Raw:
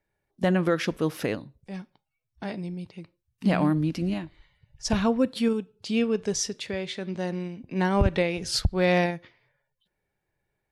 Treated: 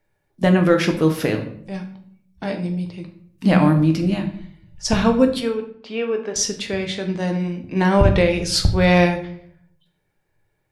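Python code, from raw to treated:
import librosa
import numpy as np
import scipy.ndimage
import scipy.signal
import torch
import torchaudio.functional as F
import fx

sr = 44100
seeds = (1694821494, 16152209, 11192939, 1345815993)

y = fx.bandpass_edges(x, sr, low_hz=450.0, high_hz=2100.0, at=(5.4, 6.36))
y = fx.room_shoebox(y, sr, seeds[0], volume_m3=91.0, walls='mixed', distance_m=0.52)
y = F.gain(torch.from_numpy(y), 6.0).numpy()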